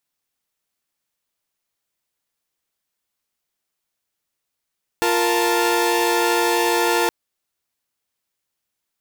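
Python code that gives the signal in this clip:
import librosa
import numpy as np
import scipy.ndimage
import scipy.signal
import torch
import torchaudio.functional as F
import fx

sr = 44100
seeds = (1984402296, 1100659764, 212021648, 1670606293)

y = fx.chord(sr, length_s=2.07, notes=(65, 70, 81), wave='saw', level_db=-18.5)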